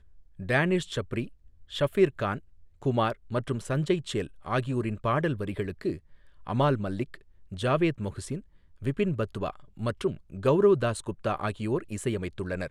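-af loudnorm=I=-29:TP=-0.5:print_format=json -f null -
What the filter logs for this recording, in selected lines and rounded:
"input_i" : "-28.9",
"input_tp" : "-10.3",
"input_lra" : "2.6",
"input_thresh" : "-39.3",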